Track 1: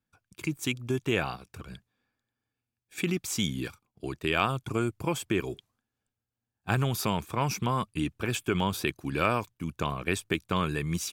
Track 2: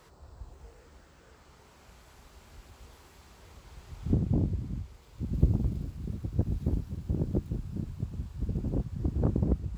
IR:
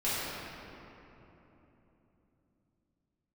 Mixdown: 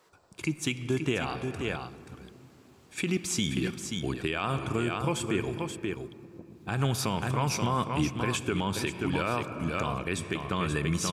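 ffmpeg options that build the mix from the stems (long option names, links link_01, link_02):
-filter_complex "[0:a]lowpass=frequency=11000:width=0.5412,lowpass=frequency=11000:width=1.3066,volume=1.5dB,asplit=3[link_01][link_02][link_03];[link_02]volume=-21.5dB[link_04];[link_03]volume=-7dB[link_05];[1:a]highpass=260,acompressor=threshold=-51dB:ratio=1.5,volume=-5dB[link_06];[2:a]atrim=start_sample=2205[link_07];[link_04][link_07]afir=irnorm=-1:irlink=0[link_08];[link_05]aecho=0:1:531:1[link_09];[link_01][link_06][link_08][link_09]amix=inputs=4:normalize=0,alimiter=limit=-17dB:level=0:latency=1:release=122"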